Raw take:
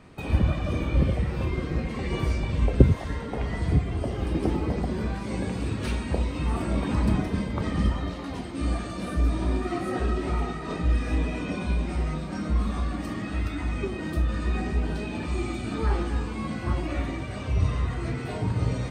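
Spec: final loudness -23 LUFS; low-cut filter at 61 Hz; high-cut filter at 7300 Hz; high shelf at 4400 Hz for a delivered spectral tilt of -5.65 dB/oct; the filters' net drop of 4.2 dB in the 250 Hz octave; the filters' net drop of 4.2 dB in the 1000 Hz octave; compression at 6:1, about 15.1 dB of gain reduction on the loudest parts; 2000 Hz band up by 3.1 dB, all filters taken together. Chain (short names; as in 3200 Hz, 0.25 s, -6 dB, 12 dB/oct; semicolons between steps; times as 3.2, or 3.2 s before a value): HPF 61 Hz; LPF 7300 Hz; bell 250 Hz -5.5 dB; bell 1000 Hz -7 dB; bell 2000 Hz +6.5 dB; high shelf 4400 Hz -4.5 dB; compressor 6:1, threshold -29 dBFS; gain +11.5 dB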